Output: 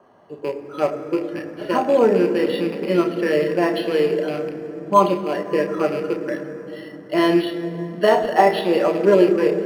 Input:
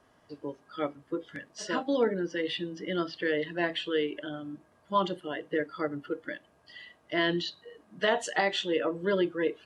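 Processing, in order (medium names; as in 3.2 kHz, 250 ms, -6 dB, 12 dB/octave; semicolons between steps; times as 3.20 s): rattle on loud lows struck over -41 dBFS, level -28 dBFS; peaking EQ 530 Hz +8.5 dB 2.5 oct; reverberation RT60 3.5 s, pre-delay 3 ms, DRR 3.5 dB; decimation joined by straight lines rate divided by 6×; trim -3.5 dB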